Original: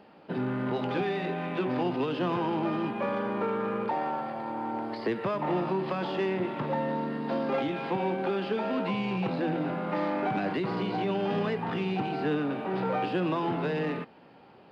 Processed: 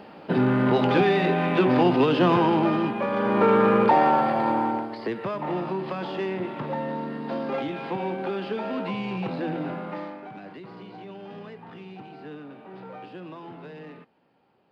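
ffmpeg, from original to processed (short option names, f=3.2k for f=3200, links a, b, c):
-af "volume=18.5dB,afade=t=out:st=2.33:d=0.76:silence=0.473151,afade=t=in:st=3.09:d=0.45:silence=0.354813,afade=t=out:st=4.49:d=0.4:silence=0.251189,afade=t=out:st=9.71:d=0.49:silence=0.251189"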